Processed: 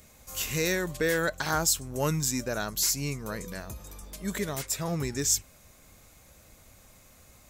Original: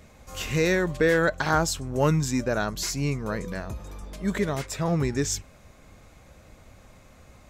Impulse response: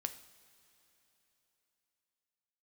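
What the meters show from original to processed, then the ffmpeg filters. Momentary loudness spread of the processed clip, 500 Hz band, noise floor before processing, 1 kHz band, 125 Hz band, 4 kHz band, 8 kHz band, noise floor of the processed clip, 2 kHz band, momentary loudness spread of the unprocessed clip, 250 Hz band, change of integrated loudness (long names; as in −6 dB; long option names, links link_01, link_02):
12 LU, −6.0 dB, −53 dBFS, −5.5 dB, −6.5 dB, +1.0 dB, +5.0 dB, −57 dBFS, −4.0 dB, 12 LU, −6.5 dB, −3.0 dB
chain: -af "aemphasis=mode=production:type=75fm,volume=-5.5dB"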